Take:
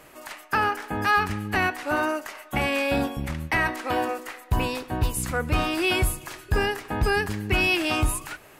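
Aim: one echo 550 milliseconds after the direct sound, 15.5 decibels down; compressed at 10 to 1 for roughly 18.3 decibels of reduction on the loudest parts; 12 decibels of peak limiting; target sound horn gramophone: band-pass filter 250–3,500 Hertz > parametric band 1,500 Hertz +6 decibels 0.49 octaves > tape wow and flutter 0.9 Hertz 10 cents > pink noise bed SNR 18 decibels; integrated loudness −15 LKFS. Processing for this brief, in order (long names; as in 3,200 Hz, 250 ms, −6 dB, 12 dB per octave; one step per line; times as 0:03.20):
downward compressor 10 to 1, threshold −37 dBFS
brickwall limiter −34.5 dBFS
band-pass filter 250–3,500 Hz
parametric band 1,500 Hz +6 dB 0.49 octaves
single-tap delay 550 ms −15.5 dB
tape wow and flutter 0.9 Hz 10 cents
pink noise bed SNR 18 dB
level +28.5 dB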